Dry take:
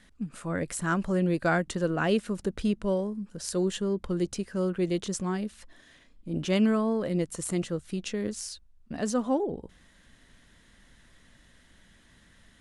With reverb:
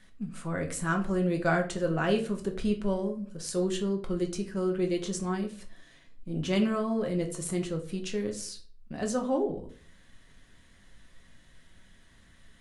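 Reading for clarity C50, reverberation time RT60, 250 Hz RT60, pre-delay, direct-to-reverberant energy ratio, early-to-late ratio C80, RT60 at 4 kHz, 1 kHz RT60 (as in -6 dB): 11.5 dB, 0.45 s, 0.55 s, 5 ms, 2.5 dB, 16.0 dB, 0.30 s, 0.40 s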